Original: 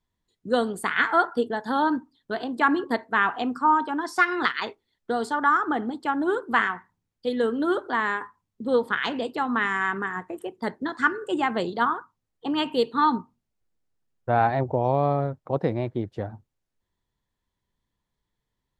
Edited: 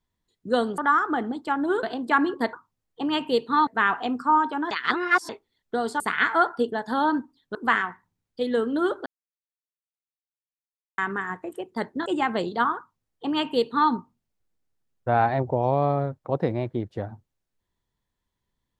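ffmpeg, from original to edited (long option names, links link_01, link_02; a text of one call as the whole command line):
ffmpeg -i in.wav -filter_complex "[0:a]asplit=12[link_01][link_02][link_03][link_04][link_05][link_06][link_07][link_08][link_09][link_10][link_11][link_12];[link_01]atrim=end=0.782[link_13];[link_02]atrim=start=5.358:end=6.412[link_14];[link_03]atrim=start=2.328:end=3.032[link_15];[link_04]atrim=start=11.978:end=13.122[link_16];[link_05]atrim=start=3.028:end=4.072[link_17];[link_06]atrim=start=4.068:end=4.652,asetpts=PTS-STARTPTS,areverse[link_18];[link_07]atrim=start=4.648:end=5.362[link_19];[link_08]atrim=start=0.778:end=2.332[link_20];[link_09]atrim=start=6.408:end=7.92,asetpts=PTS-STARTPTS,afade=type=out:start_time=1.508:duration=0.004:curve=hsin[link_21];[link_10]atrim=start=7.92:end=9.84,asetpts=PTS-STARTPTS,volume=0[link_22];[link_11]atrim=start=9.84:end=10.922,asetpts=PTS-STARTPTS,afade=type=in:duration=0.004:curve=hsin[link_23];[link_12]atrim=start=11.268[link_24];[link_13][link_14]acrossfade=duration=0.004:curve1=hsin:curve2=hsin[link_25];[link_25][link_15]acrossfade=duration=0.004:curve1=hsin:curve2=hsin[link_26];[link_26][link_16]acrossfade=duration=0.004:curve1=hsin:curve2=hsin[link_27];[link_27][link_17]acrossfade=duration=0.004:curve1=hsin:curve2=hsin[link_28];[link_28][link_18]acrossfade=duration=0.004:curve1=hsin:curve2=hsin[link_29];[link_29][link_19]acrossfade=duration=0.004:curve1=hsin:curve2=hsin[link_30];[link_30][link_20]acrossfade=duration=0.004:curve1=hsin:curve2=hsin[link_31];[link_21][link_22][link_23]concat=n=3:v=0:a=1[link_32];[link_31][link_32]acrossfade=duration=0.004:curve1=hsin:curve2=hsin[link_33];[link_33][link_24]acrossfade=duration=0.004:curve1=hsin:curve2=hsin" out.wav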